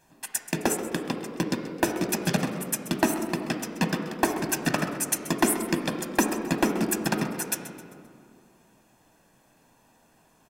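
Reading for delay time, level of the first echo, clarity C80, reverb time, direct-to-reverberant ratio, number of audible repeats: 131 ms, -15.0 dB, 7.5 dB, 2.2 s, 5.0 dB, 1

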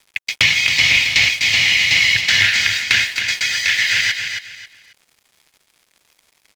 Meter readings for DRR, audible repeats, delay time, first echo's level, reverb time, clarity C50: no reverb, 3, 271 ms, -7.0 dB, no reverb, no reverb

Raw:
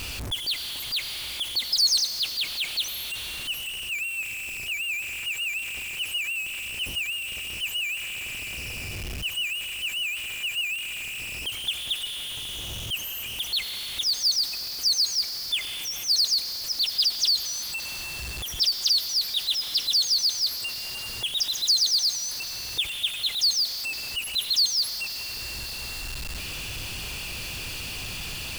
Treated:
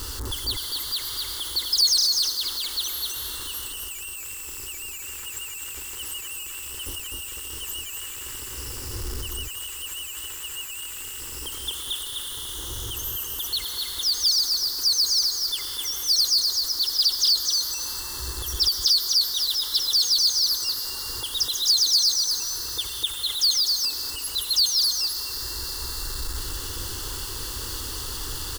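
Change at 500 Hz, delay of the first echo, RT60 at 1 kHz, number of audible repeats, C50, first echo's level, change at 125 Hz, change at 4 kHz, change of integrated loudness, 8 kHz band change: +3.5 dB, 253 ms, no reverb, 1, no reverb, -3.5 dB, +2.5 dB, +1.5 dB, +2.0 dB, +4.5 dB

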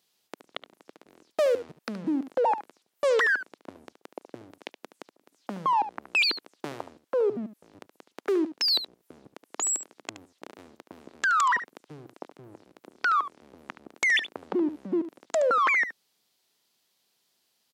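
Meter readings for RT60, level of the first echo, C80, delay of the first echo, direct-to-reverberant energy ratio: no reverb, -12.5 dB, no reverb, 72 ms, no reverb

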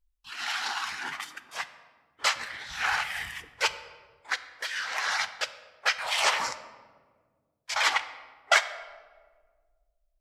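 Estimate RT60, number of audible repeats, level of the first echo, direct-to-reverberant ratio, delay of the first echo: 1.7 s, no echo, no echo, 11.5 dB, no echo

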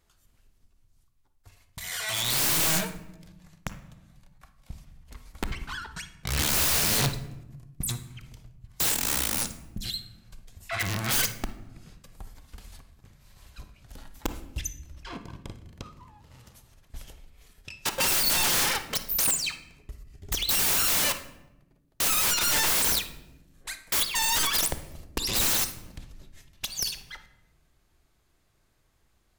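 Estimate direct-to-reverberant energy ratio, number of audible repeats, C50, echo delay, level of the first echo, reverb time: 9.0 dB, no echo, 10.5 dB, no echo, no echo, 0.95 s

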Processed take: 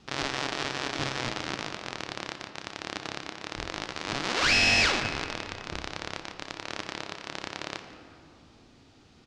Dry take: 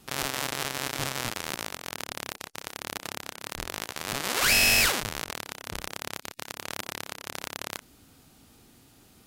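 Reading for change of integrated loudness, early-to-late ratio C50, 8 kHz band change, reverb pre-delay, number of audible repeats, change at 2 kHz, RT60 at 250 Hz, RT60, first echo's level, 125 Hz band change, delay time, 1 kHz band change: -1.0 dB, 8.5 dB, -8.0 dB, 5 ms, 1, +0.5 dB, 3.3 s, 2.6 s, -19.5 dB, +1.0 dB, 173 ms, +1.0 dB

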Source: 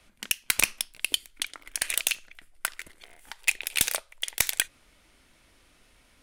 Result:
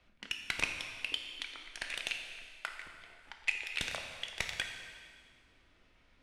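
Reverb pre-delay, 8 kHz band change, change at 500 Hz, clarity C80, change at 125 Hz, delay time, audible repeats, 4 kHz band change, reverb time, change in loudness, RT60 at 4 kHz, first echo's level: 3 ms, -20.0 dB, -5.5 dB, 6.5 dB, -4.5 dB, no echo, no echo, -8.0 dB, 1.8 s, -10.0 dB, 1.8 s, no echo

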